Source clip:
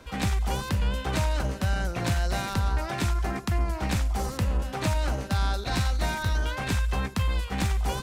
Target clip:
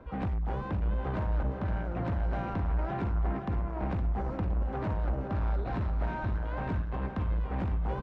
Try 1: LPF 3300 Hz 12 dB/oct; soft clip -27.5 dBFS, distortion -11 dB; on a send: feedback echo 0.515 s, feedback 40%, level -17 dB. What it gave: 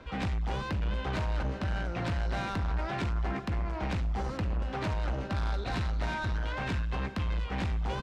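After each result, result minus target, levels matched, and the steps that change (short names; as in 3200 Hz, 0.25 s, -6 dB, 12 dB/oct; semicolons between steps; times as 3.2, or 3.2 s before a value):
4000 Hz band +14.5 dB; echo-to-direct -9 dB
change: LPF 1100 Hz 12 dB/oct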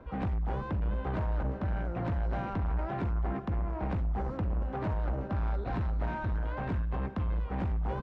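echo-to-direct -9 dB
change: feedback echo 0.515 s, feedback 40%, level -8 dB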